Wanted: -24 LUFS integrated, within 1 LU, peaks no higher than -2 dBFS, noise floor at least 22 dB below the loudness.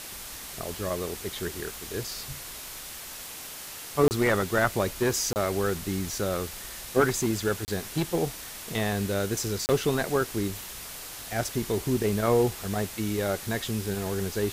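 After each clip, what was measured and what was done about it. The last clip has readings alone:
dropouts 4; longest dropout 29 ms; noise floor -41 dBFS; noise floor target -51 dBFS; loudness -29.0 LUFS; peak level -11.0 dBFS; loudness target -24.0 LUFS
-> interpolate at 4.08/5.33/7.65/9.66 s, 29 ms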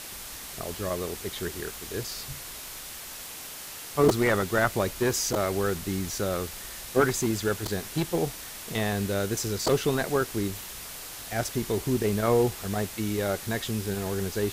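dropouts 0; noise floor -41 dBFS; noise floor target -51 dBFS
-> noise reduction 10 dB, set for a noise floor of -41 dBFS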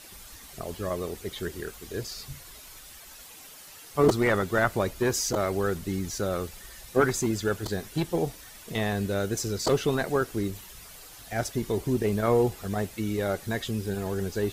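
noise floor -48 dBFS; noise floor target -51 dBFS
-> noise reduction 6 dB, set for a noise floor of -48 dBFS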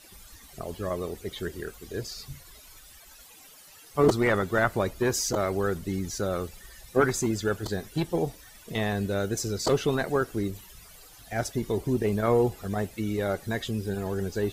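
noise floor -51 dBFS; loudness -28.5 LUFS; peak level -9.5 dBFS; loudness target -24.0 LUFS
-> trim +4.5 dB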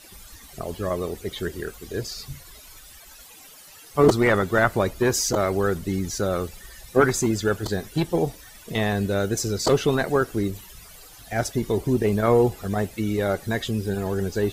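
loudness -24.0 LUFS; peak level -5.0 dBFS; noise floor -47 dBFS

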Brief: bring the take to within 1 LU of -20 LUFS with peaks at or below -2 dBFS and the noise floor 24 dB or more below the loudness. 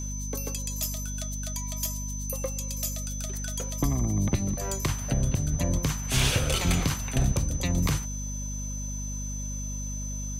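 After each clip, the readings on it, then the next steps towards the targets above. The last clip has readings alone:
hum 50 Hz; highest harmonic 250 Hz; hum level -32 dBFS; steady tone 6.1 kHz; tone level -37 dBFS; loudness -29.5 LUFS; peak level -13.0 dBFS; loudness target -20.0 LUFS
-> hum notches 50/100/150/200/250 Hz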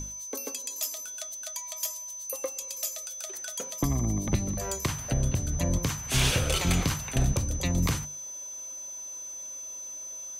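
hum not found; steady tone 6.1 kHz; tone level -37 dBFS
-> band-stop 6.1 kHz, Q 30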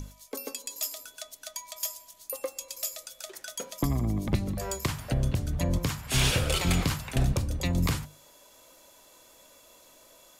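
steady tone not found; loudness -30.5 LUFS; peak level -14.0 dBFS; loudness target -20.0 LUFS
-> trim +10.5 dB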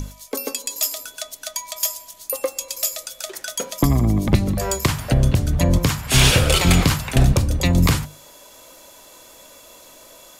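loudness -20.0 LUFS; peak level -3.5 dBFS; noise floor -46 dBFS

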